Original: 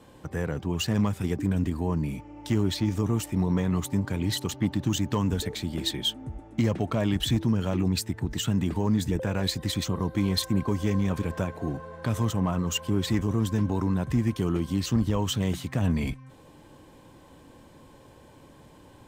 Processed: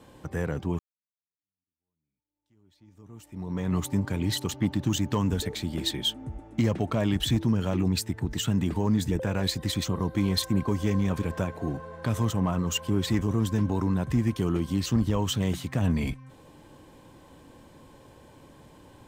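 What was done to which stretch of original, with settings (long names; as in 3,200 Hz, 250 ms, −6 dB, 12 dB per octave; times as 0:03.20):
0:00.79–0:03.74: fade in exponential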